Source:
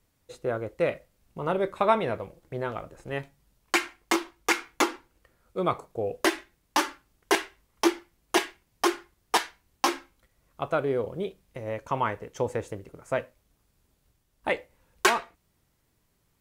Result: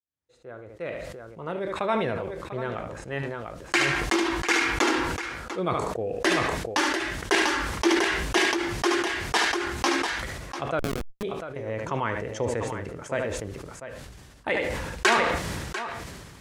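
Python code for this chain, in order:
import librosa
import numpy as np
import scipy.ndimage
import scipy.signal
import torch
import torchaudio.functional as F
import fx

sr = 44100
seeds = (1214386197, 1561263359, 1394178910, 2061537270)

p1 = fx.fade_in_head(x, sr, length_s=2.59)
p2 = scipy.signal.sosfilt(scipy.signal.butter(4, 41.0, 'highpass', fs=sr, output='sos'), p1)
p3 = p2 + fx.echo_multitap(p2, sr, ms=(73, 694), db=(-13.0, -13.5), dry=0)
p4 = fx.dynamic_eq(p3, sr, hz=1000.0, q=0.8, threshold_db=-34.0, ratio=4.0, max_db=-4)
p5 = scipy.signal.sosfilt(scipy.signal.butter(2, 8000.0, 'lowpass', fs=sr, output='sos'), p4)
p6 = fx.peak_eq(p5, sr, hz=1700.0, db=4.0, octaves=0.41)
p7 = fx.schmitt(p6, sr, flips_db=-24.0, at=(10.79, 11.23))
y = fx.sustainer(p7, sr, db_per_s=29.0)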